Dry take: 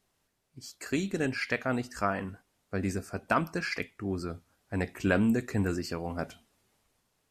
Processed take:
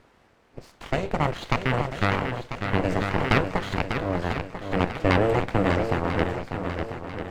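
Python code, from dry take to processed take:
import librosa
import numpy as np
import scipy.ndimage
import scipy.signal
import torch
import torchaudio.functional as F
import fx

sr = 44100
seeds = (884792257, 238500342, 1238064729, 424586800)

p1 = fx.bin_compress(x, sr, power=0.6)
p2 = fx.lowpass(p1, sr, hz=1100.0, slope=6)
p3 = np.abs(p2)
p4 = fx.cheby_harmonics(p3, sr, harmonics=(7,), levels_db=(-22,), full_scale_db=-12.0)
p5 = p4 + fx.echo_swing(p4, sr, ms=993, ratio=1.5, feedback_pct=41, wet_db=-7, dry=0)
p6 = fx.sustainer(p5, sr, db_per_s=42.0, at=(2.89, 3.38), fade=0.02)
y = p6 * 10.0 ** (7.5 / 20.0)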